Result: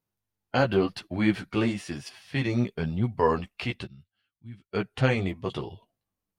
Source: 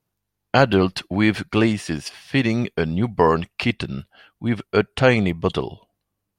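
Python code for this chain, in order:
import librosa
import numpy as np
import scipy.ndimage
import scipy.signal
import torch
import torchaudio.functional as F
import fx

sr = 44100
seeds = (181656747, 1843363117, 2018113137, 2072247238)

y = fx.chorus_voices(x, sr, voices=2, hz=0.96, base_ms=12, depth_ms=4.3, mix_pct=40)
y = fx.tone_stack(y, sr, knobs='6-0-2', at=(3.86, 4.72), fade=0.02)
y = fx.hpss(y, sr, part='harmonic', gain_db=5)
y = y * 10.0 ** (-7.5 / 20.0)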